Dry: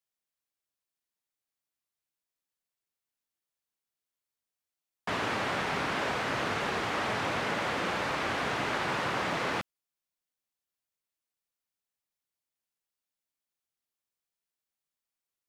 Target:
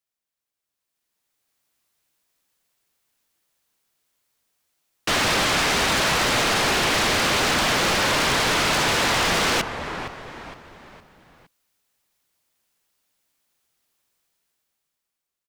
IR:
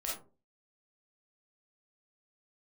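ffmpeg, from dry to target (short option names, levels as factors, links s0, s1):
-filter_complex "[0:a]dynaudnorm=f=260:g=9:m=5.31,asplit=5[s0][s1][s2][s3][s4];[s1]adelay=463,afreqshift=-89,volume=0.15[s5];[s2]adelay=926,afreqshift=-178,volume=0.0646[s6];[s3]adelay=1389,afreqshift=-267,volume=0.0275[s7];[s4]adelay=1852,afreqshift=-356,volume=0.0119[s8];[s0][s5][s6][s7][s8]amix=inputs=5:normalize=0,aeval=exprs='0.119*(abs(mod(val(0)/0.119+3,4)-2)-1)':c=same,volume=1.33"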